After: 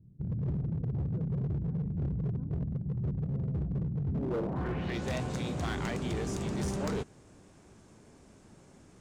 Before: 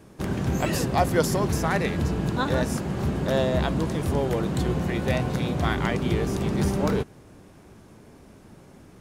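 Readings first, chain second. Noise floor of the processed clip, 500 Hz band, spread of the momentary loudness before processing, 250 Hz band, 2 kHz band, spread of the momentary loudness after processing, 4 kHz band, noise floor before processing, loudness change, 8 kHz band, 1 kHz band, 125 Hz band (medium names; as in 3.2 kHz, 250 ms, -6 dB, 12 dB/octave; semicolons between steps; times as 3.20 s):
-58 dBFS, -12.5 dB, 4 LU, -9.0 dB, -13.0 dB, 2 LU, -12.0 dB, -51 dBFS, -8.5 dB, -12.0 dB, -14.5 dB, -5.5 dB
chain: low-pass sweep 140 Hz -> 7.8 kHz, 4.09–5.06 s; overload inside the chain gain 21 dB; trim -7.5 dB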